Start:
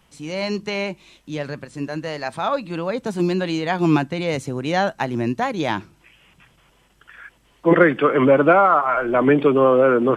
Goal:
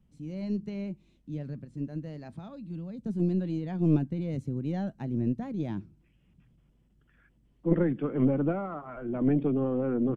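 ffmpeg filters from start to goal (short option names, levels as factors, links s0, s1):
-filter_complex "[0:a]firequalizer=gain_entry='entry(220,0);entry(420,-12);entry(960,-22)':delay=0.05:min_phase=1,asettb=1/sr,asplit=3[s0][s1][s2];[s0]atrim=end=2.324[s3];[s1]atrim=start=2.32:end=3.06,asetpts=PTS-STARTPTS,afade=t=in:d=0.004:c=qsin,afade=t=out:st=0.736:d=0.004:c=qsin,acrossover=split=190|3000[s4][s5][s6];[s5]acompressor=threshold=0.00708:ratio=3[s7];[s4][s7][s6]amix=inputs=3:normalize=0[s8];[s2]atrim=start=3.056[s9];[s3][s8]acrossfade=d=0.004:c1=hsin:c2=qsin[s10];[s10][s9]acrossfade=d=0.004:c1=qsin:c2=hsin,aeval=exprs='(tanh(2.51*val(0)+0.65)-tanh(0.65))/2.51':c=same"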